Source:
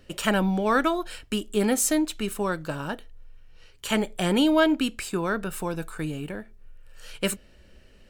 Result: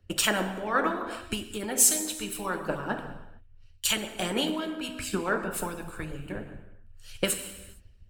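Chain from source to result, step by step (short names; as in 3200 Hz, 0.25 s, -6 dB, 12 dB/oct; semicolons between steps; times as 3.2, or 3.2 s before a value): bell 85 Hz +11.5 dB 0.3 oct; non-linear reverb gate 0.49 s falling, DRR 2 dB; compressor 2:1, threshold -35 dBFS, peak gain reduction 12 dB; harmonic-percussive split harmonic -12 dB; three-band expander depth 100%; gain +7.5 dB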